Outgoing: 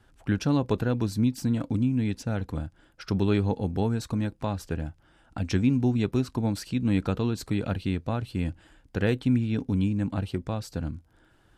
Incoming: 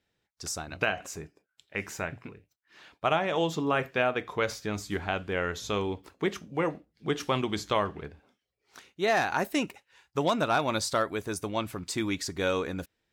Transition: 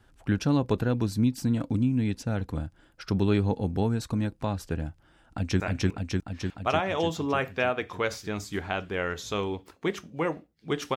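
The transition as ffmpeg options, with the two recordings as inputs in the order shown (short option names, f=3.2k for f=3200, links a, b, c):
-filter_complex "[0:a]apad=whole_dur=10.96,atrim=end=10.96,atrim=end=5.602[a];[1:a]atrim=start=1.978:end=7.34[b];[a][b]acrossfade=d=0.004:c1=hsin:c2=hsin,asplit=2[c][d];[d]afade=t=in:st=5.25:d=0.01,afade=t=out:st=5.6:d=0.01,aecho=0:1:300|600|900|1200|1500|1800|2100|2400|2700|3000|3300|3600:1|0.7|0.49|0.343|0.2401|0.16807|0.117649|0.0823543|0.057648|0.0403536|0.0282475|0.0197733[e];[c][e]amix=inputs=2:normalize=0"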